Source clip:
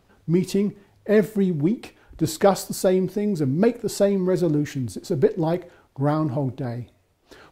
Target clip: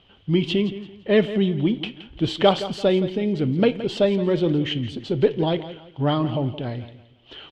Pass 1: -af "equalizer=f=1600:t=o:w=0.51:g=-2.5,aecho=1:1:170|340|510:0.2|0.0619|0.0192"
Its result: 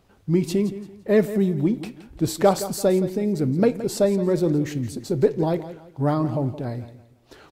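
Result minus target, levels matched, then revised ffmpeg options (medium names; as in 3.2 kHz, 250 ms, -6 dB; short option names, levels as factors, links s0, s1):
4 kHz band -9.5 dB
-af "lowpass=f=3100:t=q:w=14,equalizer=f=1600:t=o:w=0.51:g=-2.5,aecho=1:1:170|340|510:0.2|0.0619|0.0192"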